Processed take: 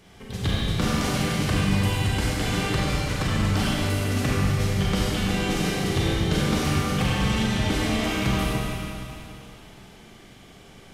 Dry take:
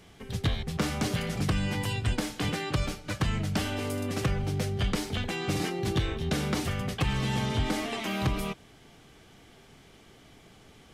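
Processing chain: Schroeder reverb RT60 2.8 s, combs from 32 ms, DRR -5.5 dB

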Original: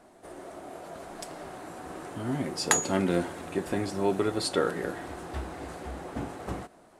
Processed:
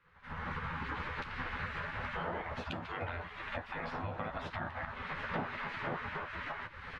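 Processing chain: recorder AGC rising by 44 dB/s; spectral gate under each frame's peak -15 dB weak; tone controls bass +4 dB, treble -12 dB; compression 2:1, threshold -39 dBFS, peak gain reduction 9.5 dB; distance through air 280 m; doubling 12 ms -6.5 dB; trim -1 dB

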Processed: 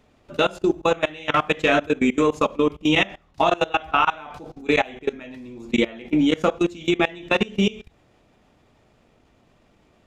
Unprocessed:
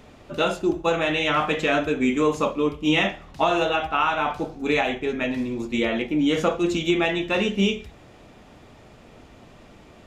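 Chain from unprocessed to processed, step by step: transient shaper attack +4 dB, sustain -3 dB; level held to a coarse grid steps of 21 dB; trim +4 dB

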